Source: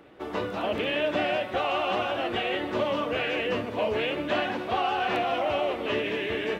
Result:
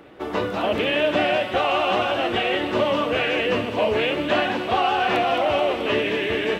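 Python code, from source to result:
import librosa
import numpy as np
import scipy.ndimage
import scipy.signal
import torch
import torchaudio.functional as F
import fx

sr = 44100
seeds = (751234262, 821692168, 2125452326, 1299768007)

y = fx.echo_wet_highpass(x, sr, ms=216, feedback_pct=74, hz=3400.0, wet_db=-7.5)
y = y * 10.0 ** (6.0 / 20.0)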